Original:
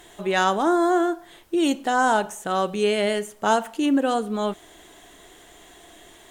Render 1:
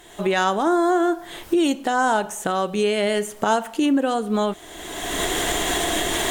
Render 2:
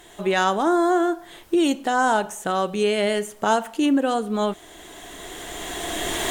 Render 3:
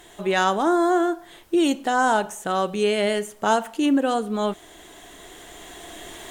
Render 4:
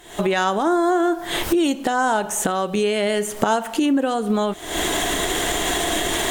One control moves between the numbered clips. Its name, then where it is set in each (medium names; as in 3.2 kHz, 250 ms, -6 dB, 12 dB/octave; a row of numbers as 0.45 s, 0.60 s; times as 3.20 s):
recorder AGC, rising by: 33 dB/s, 13 dB/s, 5.1 dB/s, 83 dB/s